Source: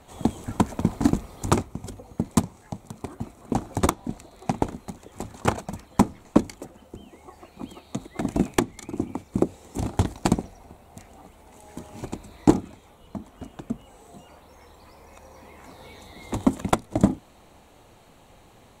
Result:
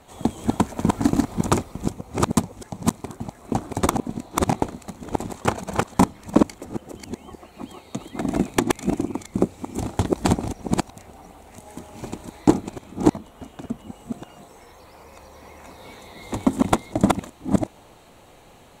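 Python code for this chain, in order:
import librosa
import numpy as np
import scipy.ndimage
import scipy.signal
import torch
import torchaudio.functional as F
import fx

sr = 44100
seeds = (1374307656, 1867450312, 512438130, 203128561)

y = fx.reverse_delay(x, sr, ms=376, wet_db=-1.0)
y = fx.low_shelf(y, sr, hz=140.0, db=-4.0)
y = y * 10.0 ** (1.5 / 20.0)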